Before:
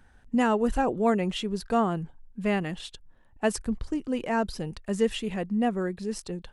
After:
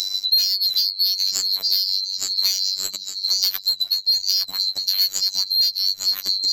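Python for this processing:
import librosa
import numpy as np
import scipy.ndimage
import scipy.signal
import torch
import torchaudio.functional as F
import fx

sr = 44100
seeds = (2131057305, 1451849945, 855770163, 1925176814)

p1 = fx.band_swap(x, sr, width_hz=4000)
p2 = fx.high_shelf(p1, sr, hz=7600.0, db=10.0)
p3 = p2 + fx.echo_feedback(p2, sr, ms=861, feedback_pct=30, wet_db=-9.0, dry=0)
p4 = fx.transient(p3, sr, attack_db=4, sustain_db=-8)
p5 = fx.hum_notches(p4, sr, base_hz=60, count=5)
p6 = fx.fold_sine(p5, sr, drive_db=13, ceiling_db=-5.5)
p7 = p5 + (p6 * librosa.db_to_amplitude(-10.5))
p8 = fx.robotise(p7, sr, hz=95.6)
p9 = fx.band_squash(p8, sr, depth_pct=100)
y = p9 * librosa.db_to_amplitude(-2.5)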